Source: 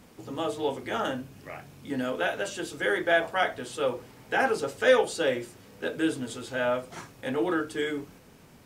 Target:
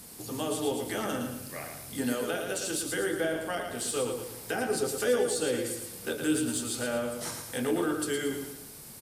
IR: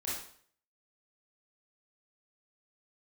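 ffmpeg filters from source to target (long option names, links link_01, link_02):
-filter_complex "[0:a]equalizer=frequency=10000:width_type=o:width=1.5:gain=13,acrossover=split=450[link_01][link_02];[link_02]acompressor=threshold=-34dB:ratio=6[link_03];[link_01][link_03]amix=inputs=2:normalize=0,aexciter=amount=1:drive=8.8:freq=4000,asetrate=42336,aresample=44100,asplit=2[link_04][link_05];[link_05]aecho=0:1:113|226|339|452|565:0.501|0.21|0.0884|0.0371|0.0156[link_06];[link_04][link_06]amix=inputs=2:normalize=0"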